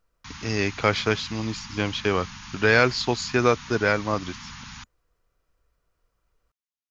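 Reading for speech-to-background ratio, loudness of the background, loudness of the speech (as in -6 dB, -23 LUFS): 16.0 dB, -40.0 LUFS, -24.0 LUFS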